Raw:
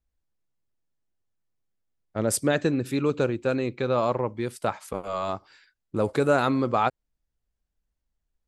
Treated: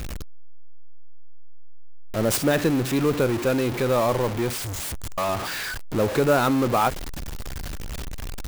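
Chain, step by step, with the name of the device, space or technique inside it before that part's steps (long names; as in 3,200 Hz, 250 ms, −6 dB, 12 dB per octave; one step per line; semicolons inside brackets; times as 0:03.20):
0:04.62–0:05.18: inverse Chebyshev band-stop filter 180–3,800 Hz, stop band 50 dB
early CD player with a faulty converter (converter with a step at zero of −24 dBFS; converter with an unsteady clock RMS 0.021 ms)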